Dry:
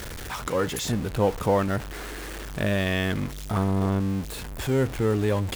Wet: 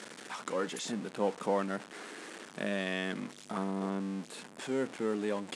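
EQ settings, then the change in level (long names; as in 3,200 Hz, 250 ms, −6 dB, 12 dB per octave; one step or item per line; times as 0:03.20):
elliptic band-pass filter 200–9,200 Hz, stop band 40 dB
−7.5 dB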